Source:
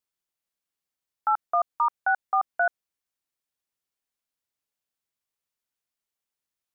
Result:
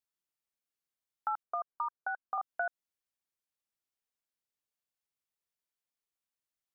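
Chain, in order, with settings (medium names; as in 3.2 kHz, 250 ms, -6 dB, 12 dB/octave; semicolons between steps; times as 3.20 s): compression, threshold -24 dBFS, peak gain reduction 5.5 dB; 1.43–2.38 s: rippled Chebyshev low-pass 1.6 kHz, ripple 3 dB; trim -6 dB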